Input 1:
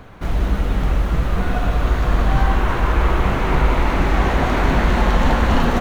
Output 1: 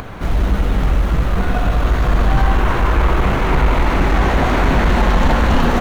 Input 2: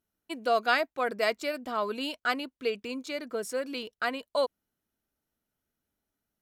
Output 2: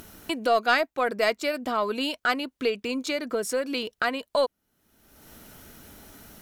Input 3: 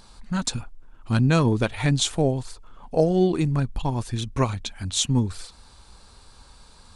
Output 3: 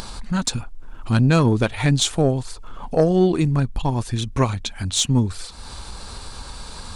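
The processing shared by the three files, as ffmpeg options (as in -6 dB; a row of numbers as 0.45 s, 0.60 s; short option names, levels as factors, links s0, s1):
-af "acompressor=mode=upward:threshold=0.0501:ratio=2.5,aeval=exprs='(tanh(2.82*val(0)+0.15)-tanh(0.15))/2.82':c=same,volume=1.58"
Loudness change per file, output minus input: +2.5 LU, +4.0 LU, +3.5 LU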